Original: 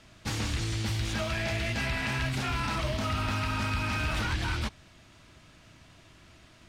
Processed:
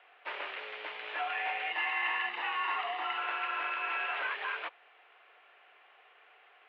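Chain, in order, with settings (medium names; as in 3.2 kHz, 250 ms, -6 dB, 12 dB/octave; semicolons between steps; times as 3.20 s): 1.71–3.18 s: comb 1.1 ms, depth 60%; mistuned SSB +95 Hz 440–2800 Hz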